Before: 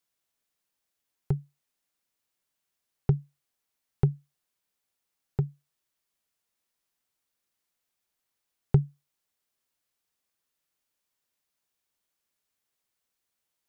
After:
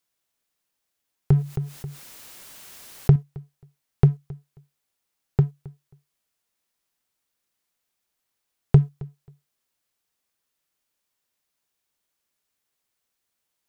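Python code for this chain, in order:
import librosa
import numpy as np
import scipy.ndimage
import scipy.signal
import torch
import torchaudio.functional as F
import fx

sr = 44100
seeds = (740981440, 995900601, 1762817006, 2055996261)

p1 = fx.leveller(x, sr, passes=1)
p2 = p1 + fx.echo_feedback(p1, sr, ms=268, feedback_pct=18, wet_db=-21.5, dry=0)
p3 = fx.env_flatten(p2, sr, amount_pct=50, at=(1.32, 3.16))
y = p3 * 10.0 ** (5.0 / 20.0)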